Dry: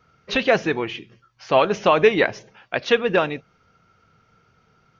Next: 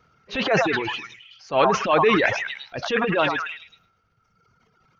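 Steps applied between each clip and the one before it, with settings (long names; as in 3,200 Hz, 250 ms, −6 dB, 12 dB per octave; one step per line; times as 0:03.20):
echo through a band-pass that steps 105 ms, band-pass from 1,000 Hz, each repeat 0.7 octaves, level −1 dB
transient designer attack −10 dB, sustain +7 dB
reverb reduction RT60 1.5 s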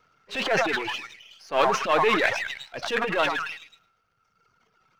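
gain on one half-wave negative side −7 dB
low-shelf EQ 260 Hz −10.5 dB
level +1 dB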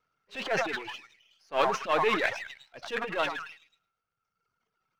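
expander for the loud parts 1.5 to 1, over −40 dBFS
level −3.5 dB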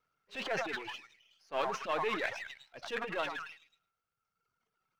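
downward compressor 2 to 1, threshold −30 dBFS, peak gain reduction 6 dB
level −3 dB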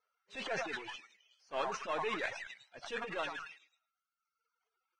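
level −3 dB
Ogg Vorbis 16 kbit/s 22,050 Hz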